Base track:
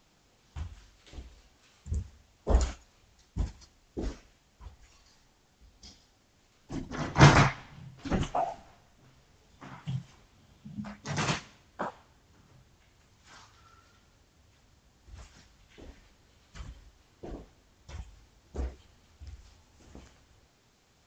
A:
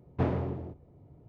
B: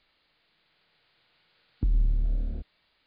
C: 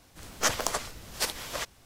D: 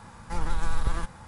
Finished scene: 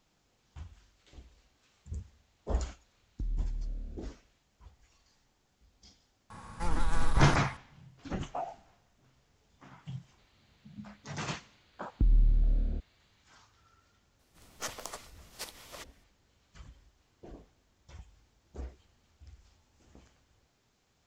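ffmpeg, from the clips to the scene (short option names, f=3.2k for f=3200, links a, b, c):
-filter_complex "[2:a]asplit=2[a][b];[0:a]volume=-7dB[c];[4:a]aeval=exprs='val(0)+0.00282*sin(2*PI*1100*n/s)':c=same[d];[3:a]bandreject=f=1.6k:w=14[e];[a]atrim=end=3.06,asetpts=PTS-STARTPTS,volume=-10.5dB,afade=t=in:d=0.004:c=hsin,afade=t=out:st=3.056:d=0.004:c=hsin,adelay=1370[f];[d]atrim=end=1.27,asetpts=PTS-STARTPTS,volume=-2dB,afade=t=in:d=0.004:c=hsin,afade=t=out:st=1.266:d=0.004:c=hsin,adelay=6300[g];[b]atrim=end=3.06,asetpts=PTS-STARTPTS,afade=t=in:d=0.004:c=hsin,afade=t=out:st=3.056:d=0.004:c=hsin,adelay=448938S[h];[e]atrim=end=1.85,asetpts=PTS-STARTPTS,volume=-12.5dB,afade=t=in:d=0.004:c=hsin,afade=t=out:st=1.846:d=0.004:c=hsin,adelay=14190[i];[c][f][g][h][i]amix=inputs=5:normalize=0"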